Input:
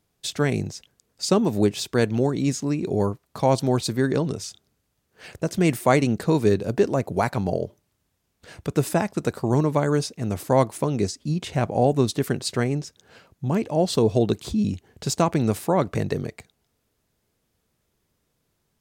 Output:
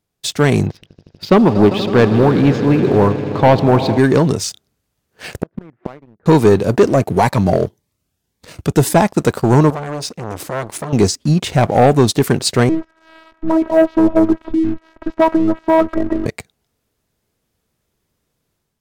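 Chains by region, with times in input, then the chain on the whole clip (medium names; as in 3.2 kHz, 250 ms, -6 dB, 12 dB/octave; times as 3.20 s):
0.66–3.98 s: low-pass 3.4 kHz 24 dB/octave + echo with a slow build-up 80 ms, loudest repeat 5, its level -18 dB
5.42–6.26 s: low-pass 1.7 kHz 24 dB/octave + inverted gate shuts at -18 dBFS, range -29 dB
6.85–8.96 s: high-pass 40 Hz 24 dB/octave + Shepard-style phaser rising 1.8 Hz
9.70–10.93 s: treble shelf 9.3 kHz -6.5 dB + compression 2:1, threshold -33 dBFS + transformer saturation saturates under 1.4 kHz
12.69–16.26 s: zero-crossing glitches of -24.5 dBFS + low-pass 1.5 kHz 24 dB/octave + robot voice 323 Hz
whole clip: dynamic bell 900 Hz, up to +4 dB, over -33 dBFS, Q 1.2; level rider gain up to 6 dB; waveshaping leveller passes 2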